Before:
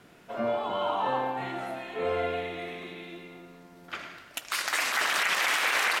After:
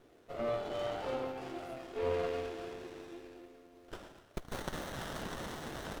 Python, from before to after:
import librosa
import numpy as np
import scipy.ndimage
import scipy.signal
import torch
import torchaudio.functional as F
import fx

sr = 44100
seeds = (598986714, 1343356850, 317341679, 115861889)

y = fx.fixed_phaser(x, sr, hz=430.0, stages=4)
y = fx.rider(y, sr, range_db=4, speed_s=2.0)
y = fx.running_max(y, sr, window=17)
y = F.gain(torch.from_numpy(y), -5.5).numpy()